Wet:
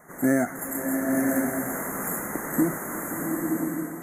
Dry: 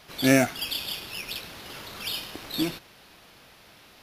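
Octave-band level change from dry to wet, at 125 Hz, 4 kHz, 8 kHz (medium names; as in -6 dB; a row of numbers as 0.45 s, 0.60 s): -0.5 dB, under -35 dB, +4.5 dB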